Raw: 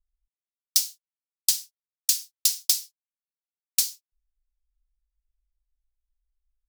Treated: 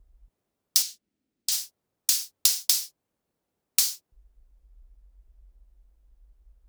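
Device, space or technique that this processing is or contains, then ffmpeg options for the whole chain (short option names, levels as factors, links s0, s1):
mastering chain: -filter_complex "[0:a]highpass=41,equalizer=f=490:t=o:w=2:g=3.5,acompressor=threshold=0.0708:ratio=3,tiltshelf=f=920:g=10,alimiter=level_in=8.91:limit=0.891:release=50:level=0:latency=1,asettb=1/sr,asplit=3[s0][s1][s2];[s0]atrim=end=0.824[s3];[s1]atrim=start=0.82:end=1.52,asetpts=PTS-STARTPTS,afade=t=in:d=0.004:c=qsin,afade=t=out:st=0.696:d=0.004:c=qsin,equalizer=f=125:t=o:w=1:g=-6,equalizer=f=250:t=o:w=1:g=9,equalizer=f=500:t=o:w=1:g=-6,equalizer=f=1000:t=o:w=1:g=-11,equalizer=f=16000:t=o:w=1:g=-11[s4];[s2]atrim=start=1.516[s5];[s3][s4]acrossfade=d=0.004:c1=hsin:c2=qsin[s6];[s6][s5]acrossfade=d=0.004:c1=qsin:c2=hsin,volume=0.891"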